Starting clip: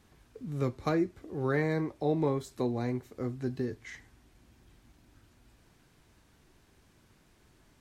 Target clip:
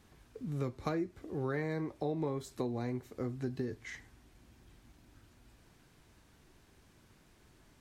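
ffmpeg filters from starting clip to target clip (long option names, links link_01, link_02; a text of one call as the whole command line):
ffmpeg -i in.wav -af "acompressor=threshold=-33dB:ratio=3" out.wav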